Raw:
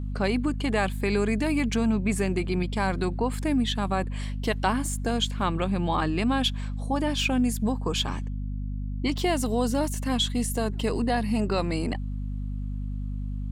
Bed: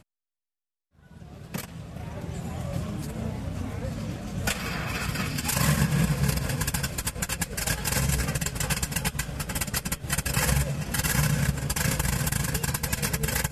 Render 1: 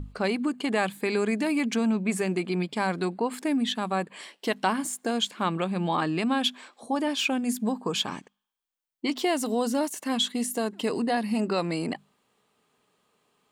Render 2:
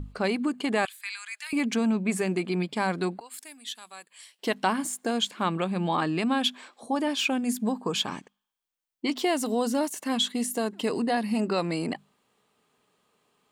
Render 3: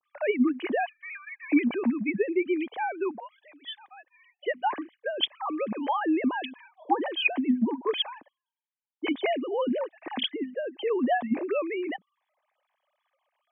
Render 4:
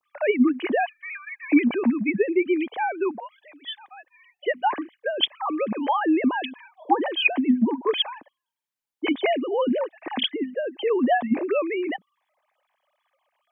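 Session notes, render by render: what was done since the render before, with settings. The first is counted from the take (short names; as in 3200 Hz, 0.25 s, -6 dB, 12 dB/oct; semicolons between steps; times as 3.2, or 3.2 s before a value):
notches 50/100/150/200/250 Hz
0.85–1.53 Bessel high-pass 2000 Hz, order 6; 3.2–4.39 differentiator
sine-wave speech; notch comb 1400 Hz
gain +4.5 dB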